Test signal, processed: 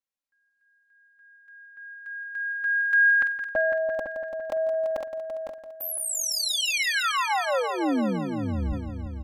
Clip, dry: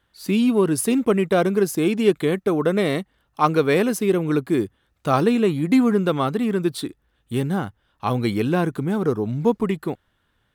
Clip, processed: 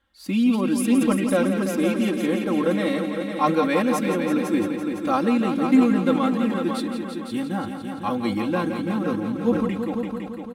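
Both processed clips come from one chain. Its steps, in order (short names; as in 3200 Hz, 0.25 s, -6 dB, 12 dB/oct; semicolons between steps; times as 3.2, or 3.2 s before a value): high shelf 8800 Hz -7 dB; notch 430 Hz, Q 12; comb 3.7 ms, depth 86%; on a send: multi-head echo 0.169 s, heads all three, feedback 49%, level -10 dB; on the sum: sustainer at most 77 dB/s; gain -5.5 dB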